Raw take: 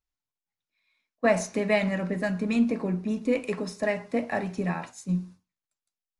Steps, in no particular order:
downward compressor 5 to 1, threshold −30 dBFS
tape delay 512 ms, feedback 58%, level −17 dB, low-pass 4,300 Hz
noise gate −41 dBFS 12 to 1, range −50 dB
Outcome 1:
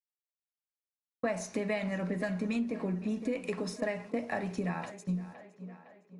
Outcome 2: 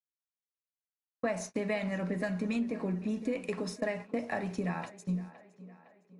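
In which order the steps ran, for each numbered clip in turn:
noise gate, then tape delay, then downward compressor
downward compressor, then noise gate, then tape delay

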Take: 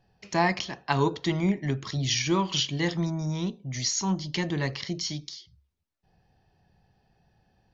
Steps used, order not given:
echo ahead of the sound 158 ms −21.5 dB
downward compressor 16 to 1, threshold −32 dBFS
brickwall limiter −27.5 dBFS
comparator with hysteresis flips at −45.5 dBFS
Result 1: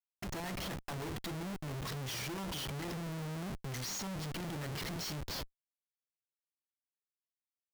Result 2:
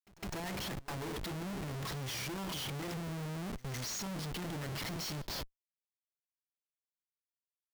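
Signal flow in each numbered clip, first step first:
downward compressor, then brickwall limiter, then echo ahead of the sound, then comparator with hysteresis
brickwall limiter, then downward compressor, then comparator with hysteresis, then echo ahead of the sound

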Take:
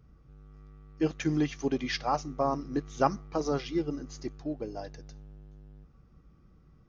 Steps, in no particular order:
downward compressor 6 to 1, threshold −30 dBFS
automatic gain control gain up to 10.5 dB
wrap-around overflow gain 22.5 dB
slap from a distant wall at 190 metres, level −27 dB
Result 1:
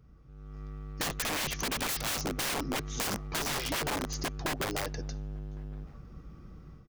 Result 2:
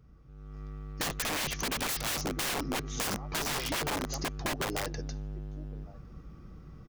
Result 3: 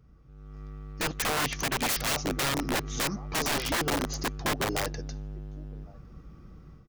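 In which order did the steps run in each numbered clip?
automatic gain control, then wrap-around overflow, then downward compressor, then slap from a distant wall
slap from a distant wall, then automatic gain control, then wrap-around overflow, then downward compressor
downward compressor, then automatic gain control, then slap from a distant wall, then wrap-around overflow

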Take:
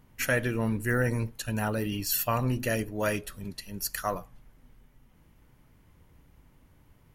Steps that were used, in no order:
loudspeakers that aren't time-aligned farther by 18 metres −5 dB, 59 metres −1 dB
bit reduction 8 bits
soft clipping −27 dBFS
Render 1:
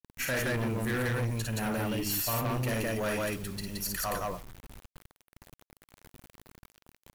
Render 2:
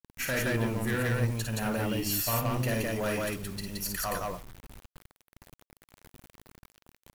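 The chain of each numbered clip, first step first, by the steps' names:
loudspeakers that aren't time-aligned, then bit reduction, then soft clipping
soft clipping, then loudspeakers that aren't time-aligned, then bit reduction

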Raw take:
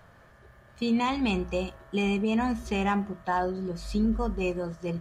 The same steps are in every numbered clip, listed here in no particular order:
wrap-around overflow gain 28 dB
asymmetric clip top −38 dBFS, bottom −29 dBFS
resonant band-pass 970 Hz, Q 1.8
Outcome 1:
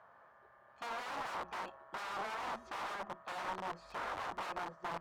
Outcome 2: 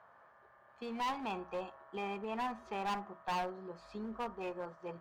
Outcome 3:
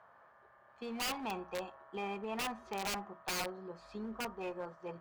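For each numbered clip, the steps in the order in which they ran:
wrap-around overflow, then resonant band-pass, then asymmetric clip
resonant band-pass, then asymmetric clip, then wrap-around overflow
resonant band-pass, then wrap-around overflow, then asymmetric clip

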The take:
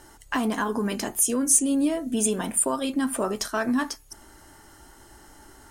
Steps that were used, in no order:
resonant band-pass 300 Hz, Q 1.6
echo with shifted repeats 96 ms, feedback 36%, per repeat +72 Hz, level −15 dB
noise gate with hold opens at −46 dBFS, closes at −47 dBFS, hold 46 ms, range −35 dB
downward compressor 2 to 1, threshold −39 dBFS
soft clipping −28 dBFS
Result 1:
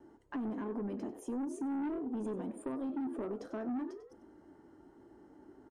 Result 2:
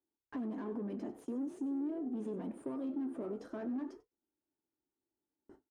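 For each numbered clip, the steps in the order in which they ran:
noise gate with hold, then resonant band-pass, then echo with shifted repeats, then soft clipping, then downward compressor
soft clipping, then resonant band-pass, then downward compressor, then echo with shifted repeats, then noise gate with hold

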